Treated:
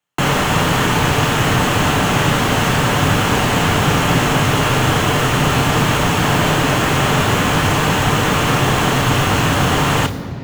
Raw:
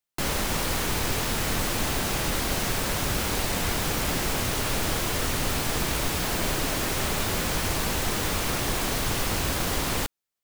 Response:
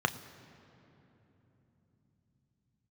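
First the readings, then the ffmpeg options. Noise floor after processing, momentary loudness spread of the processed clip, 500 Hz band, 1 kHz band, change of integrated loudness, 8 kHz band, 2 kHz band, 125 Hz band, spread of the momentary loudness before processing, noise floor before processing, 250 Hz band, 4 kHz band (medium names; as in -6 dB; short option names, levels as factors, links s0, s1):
-22 dBFS, 1 LU, +12.5 dB, +15.0 dB, +11.0 dB, +5.0 dB, +13.0 dB, +15.5 dB, 0 LU, -84 dBFS, +14.0 dB, +10.0 dB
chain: -filter_complex "[1:a]atrim=start_sample=2205[s0];[0:a][s0]afir=irnorm=-1:irlink=0,volume=1.58"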